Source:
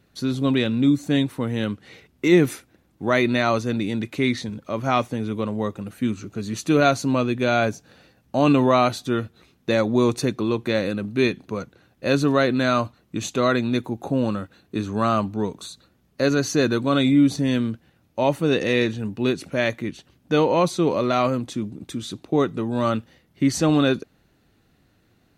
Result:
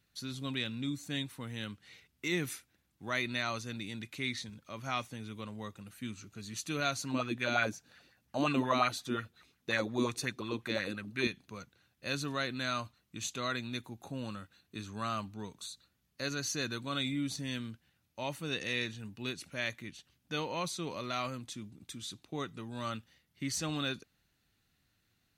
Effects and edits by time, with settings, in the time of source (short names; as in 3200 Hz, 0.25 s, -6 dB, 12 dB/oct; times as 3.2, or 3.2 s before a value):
6.98–11.27 LFO bell 5.6 Hz 250–2000 Hz +12 dB
whole clip: de-esser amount 45%; passive tone stack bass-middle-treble 5-5-5